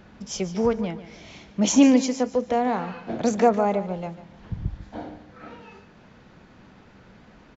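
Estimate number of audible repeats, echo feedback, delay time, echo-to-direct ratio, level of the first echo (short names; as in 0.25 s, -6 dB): 3, 33%, 0.146 s, -13.5 dB, -14.0 dB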